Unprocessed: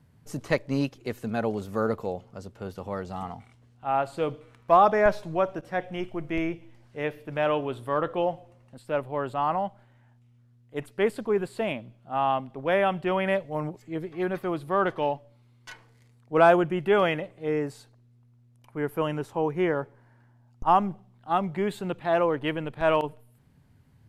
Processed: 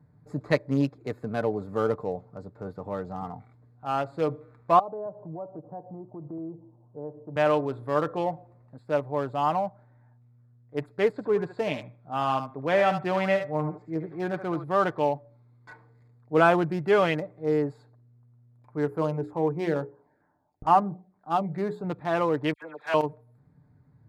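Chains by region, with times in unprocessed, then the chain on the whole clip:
4.79–7.36 elliptic band-pass 120–960 Hz + compressor 2.5:1, threshold -39 dBFS
11.12–14.64 LPF 7600 Hz 24 dB/oct + thinning echo 75 ms, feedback 25%, high-pass 890 Hz, level -5 dB
18.85–21.84 notches 60/120/180/240/300/360/420/480/540 Hz + LFO notch saw down 2.2 Hz 900–4300 Hz
22.53–22.94 HPF 680 Hz + high shelf 5200 Hz +3 dB + dispersion lows, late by 87 ms, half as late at 1900 Hz
whole clip: Wiener smoothing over 15 samples; HPF 52 Hz; comb 6.7 ms, depth 40%

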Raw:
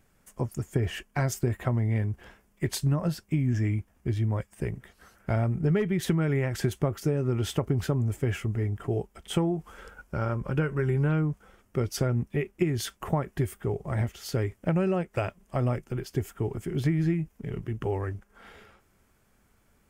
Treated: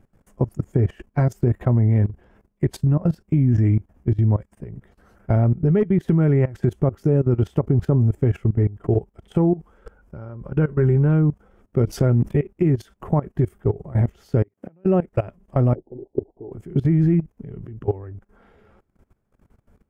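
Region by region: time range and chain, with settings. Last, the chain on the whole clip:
11.87–12.4 high shelf 2100 Hz +4.5 dB + fast leveller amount 50%
14.43–14.85 HPF 200 Hz + flipped gate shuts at -31 dBFS, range -26 dB + three-band squash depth 70%
15.75–16.52 steep low-pass 900 Hz 96 dB/oct + AM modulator 150 Hz, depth 20% + resonant low shelf 240 Hz -9.5 dB, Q 1.5
whole clip: tilt shelf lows +9 dB, about 1400 Hz; level quantiser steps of 19 dB; gain +3 dB

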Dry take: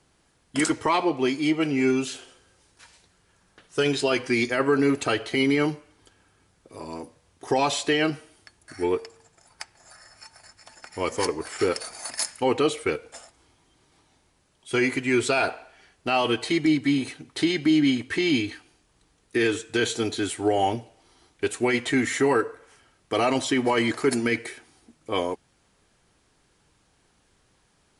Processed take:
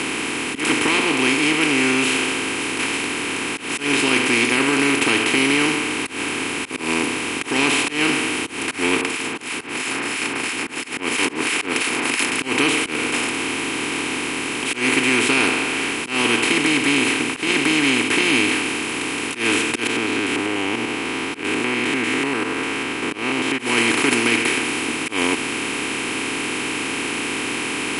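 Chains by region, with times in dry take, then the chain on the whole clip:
9.01–12.32 HPF 180 Hz + harmonic tremolo 3 Hz, depth 100%, crossover 1800 Hz
19.87–23.59 stepped spectrum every 0.1 s + LPF 1500 Hz + compressor 2.5:1, threshold -45 dBFS
whole clip: per-bin compression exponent 0.2; auto swell 0.139 s; fifteen-band EQ 250 Hz +4 dB, 630 Hz -10 dB, 2500 Hz +9 dB, 10000 Hz +6 dB; gain -6 dB

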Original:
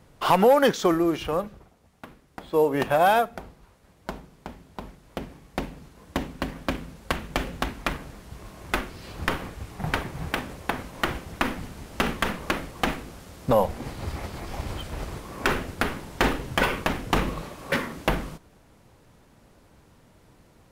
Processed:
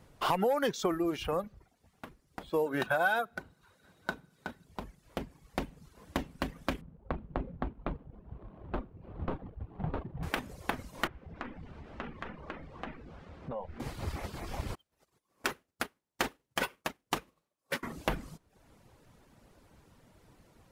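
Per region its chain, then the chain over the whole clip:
2.66–4.65 HPF 98 Hz + small resonant body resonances 1500/3800 Hz, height 15 dB, ringing for 30 ms
6.81–10.23 median filter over 25 samples + air absorption 490 m
11.07–13.8 LPF 2400 Hz + compressor 2.5:1, threshold -39 dBFS + doubler 13 ms -13 dB
14.75–17.83 HPF 96 Hz 6 dB/oct + tone controls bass -3 dB, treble +6 dB + upward expander 2.5:1, over -41 dBFS
whole clip: reverb removal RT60 0.58 s; compressor 3:1, threshold -24 dBFS; gain -3.5 dB

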